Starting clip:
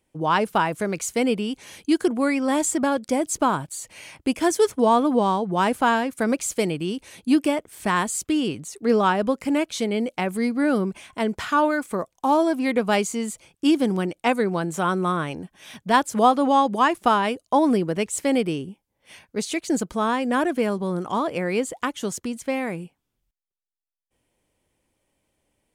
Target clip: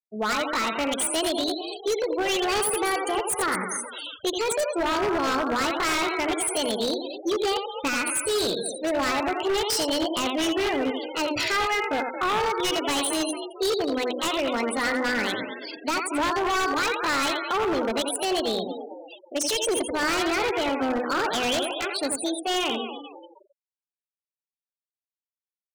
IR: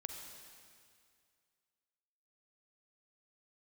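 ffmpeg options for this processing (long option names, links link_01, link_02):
-filter_complex "[0:a]bandreject=frequency=1200:width=11,alimiter=limit=-16.5dB:level=0:latency=1:release=218,asetrate=60591,aresample=44100,atempo=0.727827,equalizer=frequency=2800:width_type=o:width=0.82:gain=3,bandreject=frequency=50:width_type=h:width=6,bandreject=frequency=100:width_type=h:width=6,bandreject=frequency=150:width_type=h:width=6,bandreject=frequency=200:width_type=h:width=6,bandreject=frequency=250:width_type=h:width=6,bandreject=frequency=300:width_type=h:width=6,bandreject=frequency=350:width_type=h:width=6,asplit=2[link_01][link_02];[link_02]asplit=5[link_03][link_04][link_05][link_06][link_07];[link_03]adelay=224,afreqshift=51,volume=-10.5dB[link_08];[link_04]adelay=448,afreqshift=102,volume=-16.7dB[link_09];[link_05]adelay=672,afreqshift=153,volume=-22.9dB[link_10];[link_06]adelay=896,afreqshift=204,volume=-29.1dB[link_11];[link_07]adelay=1120,afreqshift=255,volume=-35.3dB[link_12];[link_08][link_09][link_10][link_11][link_12]amix=inputs=5:normalize=0[link_13];[link_01][link_13]amix=inputs=2:normalize=0,aresample=22050,aresample=44100,asplit=2[link_14][link_15];[link_15]aecho=0:1:85|170|255:0.473|0.0852|0.0153[link_16];[link_14][link_16]amix=inputs=2:normalize=0,afftfilt=real='re*gte(hypot(re,im),0.02)':imag='im*gte(hypot(re,im),0.02)':win_size=1024:overlap=0.75,equalizer=frequency=6200:width_type=o:width=2:gain=11.5,aeval=exprs='0.112*(abs(mod(val(0)/0.112+3,4)-2)-1)':channel_layout=same"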